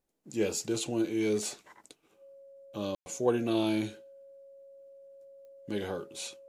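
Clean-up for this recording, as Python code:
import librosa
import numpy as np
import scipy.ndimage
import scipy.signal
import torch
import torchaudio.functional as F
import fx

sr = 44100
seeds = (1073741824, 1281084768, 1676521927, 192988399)

y = fx.fix_declick_ar(x, sr, threshold=10.0)
y = fx.notch(y, sr, hz=550.0, q=30.0)
y = fx.fix_ambience(y, sr, seeds[0], print_start_s=1.72, print_end_s=2.22, start_s=2.95, end_s=3.06)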